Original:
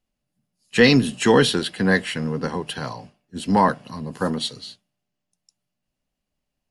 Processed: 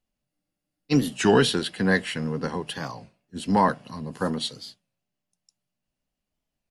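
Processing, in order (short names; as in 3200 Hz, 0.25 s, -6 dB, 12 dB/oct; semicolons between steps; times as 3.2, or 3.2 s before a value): spectral freeze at 0.3, 0.61 s; record warp 33 1/3 rpm, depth 160 cents; gain -3 dB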